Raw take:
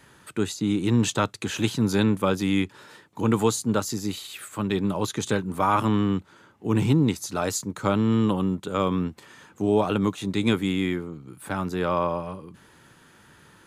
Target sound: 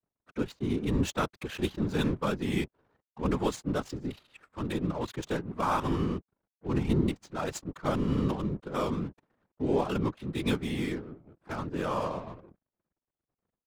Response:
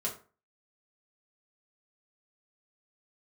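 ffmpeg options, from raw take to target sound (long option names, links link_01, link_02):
-af "aeval=exprs='sgn(val(0))*max(abs(val(0))-0.00447,0)':channel_layout=same,adynamicsmooth=sensitivity=7:basefreq=700,afftfilt=real='hypot(re,im)*cos(2*PI*random(0))':imag='hypot(re,im)*sin(2*PI*random(1))':win_size=512:overlap=0.75"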